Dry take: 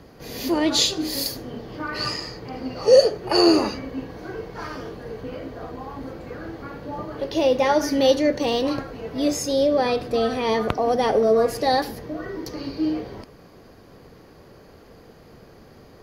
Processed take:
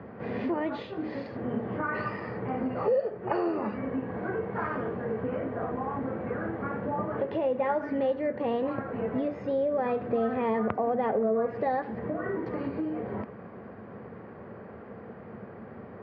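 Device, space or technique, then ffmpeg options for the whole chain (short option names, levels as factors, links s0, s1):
bass amplifier: -af "acompressor=threshold=0.0282:ratio=4,highpass=f=90:w=0.5412,highpass=f=90:w=1.3066,equalizer=f=150:t=q:w=4:g=-5,equalizer=f=210:t=q:w=4:g=7,equalizer=f=300:t=q:w=4:g=-6,lowpass=f=2000:w=0.5412,lowpass=f=2000:w=1.3066,volume=1.68"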